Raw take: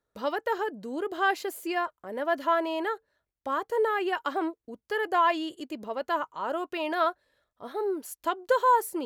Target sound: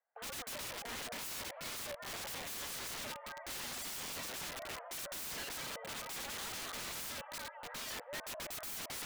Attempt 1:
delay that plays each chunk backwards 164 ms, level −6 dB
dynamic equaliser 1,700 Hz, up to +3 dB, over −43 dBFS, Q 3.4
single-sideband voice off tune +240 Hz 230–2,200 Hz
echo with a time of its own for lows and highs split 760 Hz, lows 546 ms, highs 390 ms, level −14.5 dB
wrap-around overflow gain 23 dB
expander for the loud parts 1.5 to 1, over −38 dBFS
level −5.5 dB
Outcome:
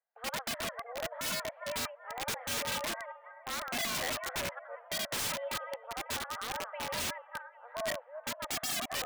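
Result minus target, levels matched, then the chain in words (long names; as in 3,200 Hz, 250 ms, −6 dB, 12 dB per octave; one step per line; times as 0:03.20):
wrap-around overflow: distortion −18 dB
delay that plays each chunk backwards 164 ms, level −6 dB
dynamic equaliser 1,700 Hz, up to +3 dB, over −43 dBFS, Q 3.4
single-sideband voice off tune +240 Hz 230–2,200 Hz
echo with a time of its own for lows and highs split 760 Hz, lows 546 ms, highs 390 ms, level −14.5 dB
wrap-around overflow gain 32 dB
expander for the loud parts 1.5 to 1, over −38 dBFS
level −5.5 dB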